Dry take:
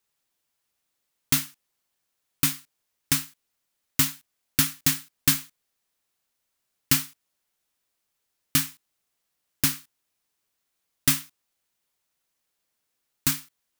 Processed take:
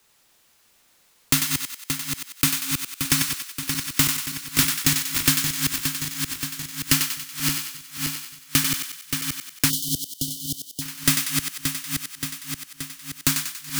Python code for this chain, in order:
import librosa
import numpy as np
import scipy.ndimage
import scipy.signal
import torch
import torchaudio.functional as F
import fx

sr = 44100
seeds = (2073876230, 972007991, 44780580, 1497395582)

p1 = fx.reverse_delay_fb(x, sr, ms=288, feedback_pct=71, wet_db=-8)
p2 = fx.high_shelf(p1, sr, hz=11000.0, db=-4.5)
p3 = p2 + fx.echo_thinned(p2, sr, ms=94, feedback_pct=45, hz=680.0, wet_db=-6.5, dry=0)
p4 = fx.spec_erase(p3, sr, start_s=9.7, length_s=1.11, low_hz=750.0, high_hz=2900.0)
p5 = 10.0 ** (-21.5 / 20.0) * np.tanh(p4 / 10.0 ** (-21.5 / 20.0))
p6 = p4 + (p5 * 10.0 ** (-6.0 / 20.0))
p7 = fx.band_squash(p6, sr, depth_pct=40)
y = p7 * 10.0 ** (3.0 / 20.0)